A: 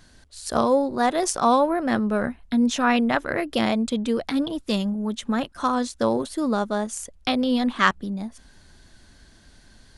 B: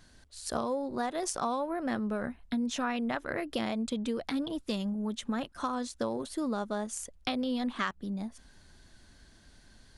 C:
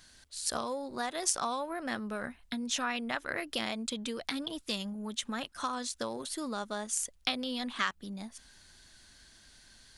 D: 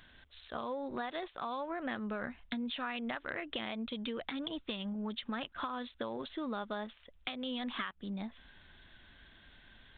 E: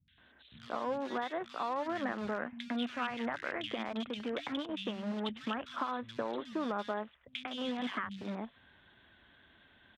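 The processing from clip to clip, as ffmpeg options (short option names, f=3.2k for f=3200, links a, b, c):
-af "acompressor=threshold=-23dB:ratio=6,volume=-5.5dB"
-af "tiltshelf=f=1.2k:g=-6.5"
-af "acompressor=threshold=-36dB:ratio=12,aresample=8000,volume=30.5dB,asoftclip=hard,volume=-30.5dB,aresample=44100,volume=2.5dB"
-filter_complex "[0:a]asplit=2[a][b];[b]acrusher=bits=5:mix=0:aa=0.000001,volume=-5.5dB[c];[a][c]amix=inputs=2:normalize=0,highpass=100,lowpass=3.4k,acrossover=split=170|2200[d][e][f];[f]adelay=80[g];[e]adelay=180[h];[d][h][g]amix=inputs=3:normalize=0"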